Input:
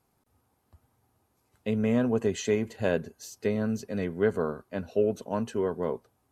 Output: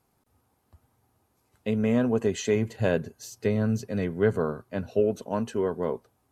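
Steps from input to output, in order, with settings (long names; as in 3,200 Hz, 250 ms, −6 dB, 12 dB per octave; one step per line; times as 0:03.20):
0:02.55–0:05.00: parametric band 120 Hz +9 dB 0.53 octaves
level +1.5 dB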